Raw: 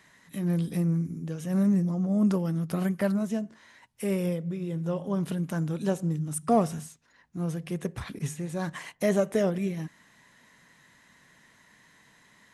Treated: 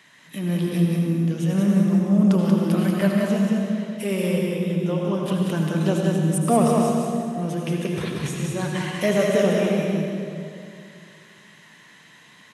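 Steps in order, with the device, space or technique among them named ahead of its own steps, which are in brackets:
PA in a hall (high-pass filter 120 Hz; parametric band 3,000 Hz +7.5 dB 0.83 octaves; single-tap delay 185 ms −4 dB; convolution reverb RT60 2.4 s, pre-delay 71 ms, DRR 1 dB)
level +3 dB

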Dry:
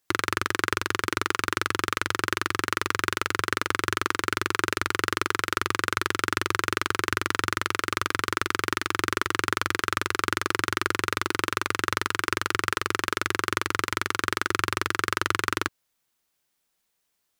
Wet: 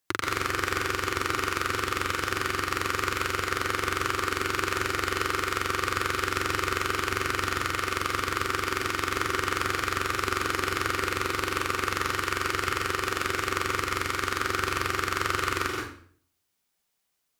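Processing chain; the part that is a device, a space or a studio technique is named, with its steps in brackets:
bathroom (convolution reverb RT60 0.55 s, pre-delay 118 ms, DRR 0.5 dB)
level −4 dB

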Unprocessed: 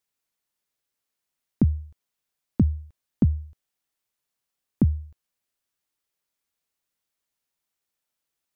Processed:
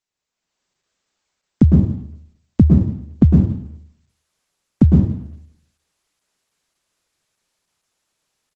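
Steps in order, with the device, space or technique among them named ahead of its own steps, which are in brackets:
speakerphone in a meeting room (convolution reverb RT60 0.65 s, pre-delay 102 ms, DRR 0 dB; far-end echo of a speakerphone 190 ms, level −26 dB; automatic gain control gain up to 11 dB; Opus 12 kbit/s 48,000 Hz)

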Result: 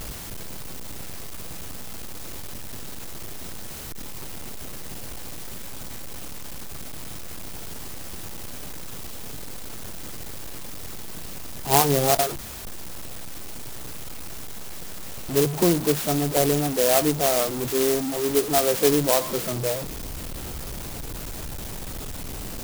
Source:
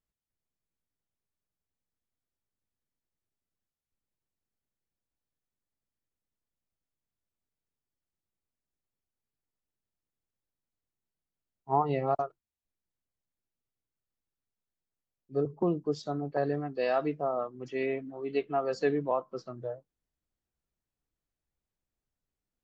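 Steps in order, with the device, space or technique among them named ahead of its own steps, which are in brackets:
early CD player with a faulty converter (converter with a step at zero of −32 dBFS; converter with an unsteady clock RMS 0.15 ms)
level +7 dB

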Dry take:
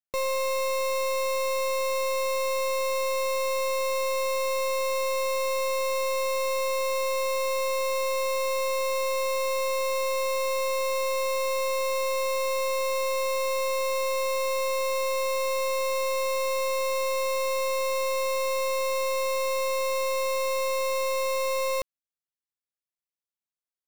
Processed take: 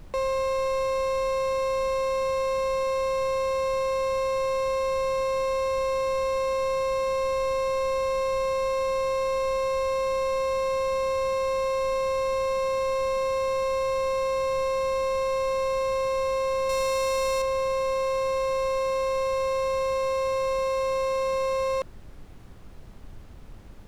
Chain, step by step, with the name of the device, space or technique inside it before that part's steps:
aircraft cabin announcement (band-pass filter 400–3,700 Hz; soft clipping −28 dBFS, distortion −13 dB; brown noise bed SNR 16 dB)
0:16.69–0:17.42: high-shelf EQ 3,200 Hz +11 dB
level +7 dB

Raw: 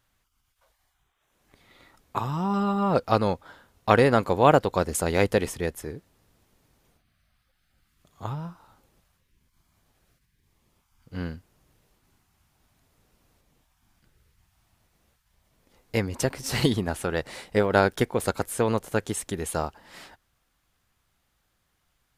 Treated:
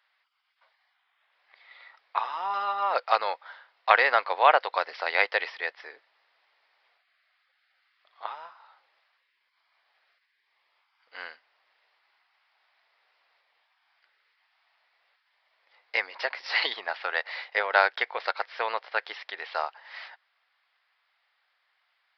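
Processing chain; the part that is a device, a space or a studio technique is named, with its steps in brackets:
musical greeting card (downsampling to 11,025 Hz; high-pass filter 680 Hz 24 dB per octave; parametric band 2,000 Hz +7 dB 0.57 octaves)
level +1.5 dB

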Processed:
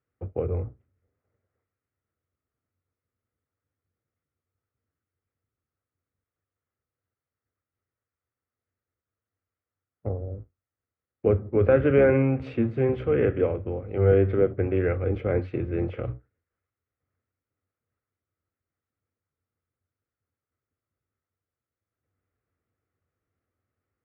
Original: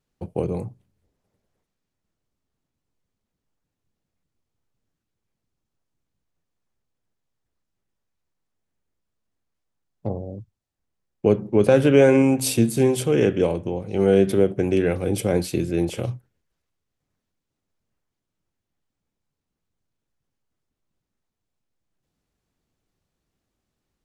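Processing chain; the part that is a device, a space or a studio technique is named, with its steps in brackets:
sub-octave bass pedal (sub-octave generator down 1 octave, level −3 dB; loudspeaker in its box 76–2,300 Hz, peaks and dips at 93 Hz +10 dB, 180 Hz −9 dB, 480 Hz +5 dB, 920 Hz −5 dB, 1,300 Hz +9 dB, 2,000 Hz +5 dB)
level −6 dB

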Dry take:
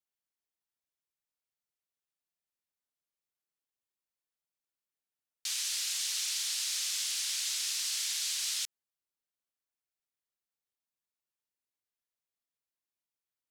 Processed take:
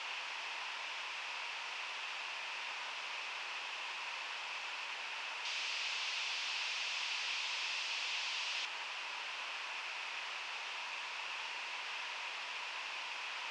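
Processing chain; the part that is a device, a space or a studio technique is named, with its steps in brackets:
home computer beeper (sign of each sample alone; loudspeaker in its box 750–4,500 Hz, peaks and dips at 960 Hz +8 dB, 2,600 Hz +9 dB, 4,000 Hz −5 dB)
level +5 dB

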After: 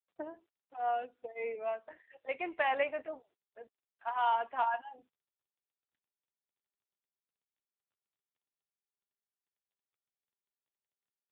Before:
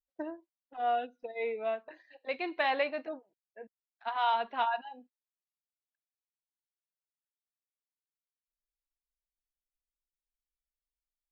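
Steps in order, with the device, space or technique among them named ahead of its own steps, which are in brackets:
telephone (band-pass filter 380–3,100 Hz; AMR narrowband 7.95 kbit/s 8,000 Hz)

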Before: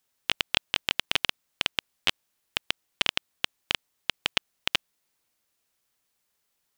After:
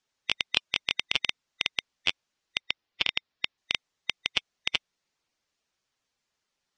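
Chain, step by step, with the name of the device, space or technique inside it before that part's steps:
0:02.60–0:03.58: low-pass filter 5,700 Hz 24 dB per octave
clip after many re-uploads (low-pass filter 7,100 Hz 24 dB per octave; spectral magnitudes quantised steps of 15 dB)
level −1 dB

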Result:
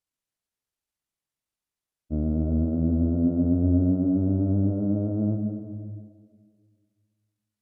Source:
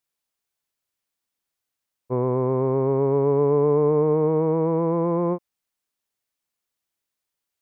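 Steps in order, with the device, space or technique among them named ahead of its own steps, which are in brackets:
monster voice (pitch shifter −8.5 semitones; low-shelf EQ 230 Hz +8.5 dB; convolution reverb RT60 1.8 s, pre-delay 101 ms, DRR 5.5 dB)
level −8 dB

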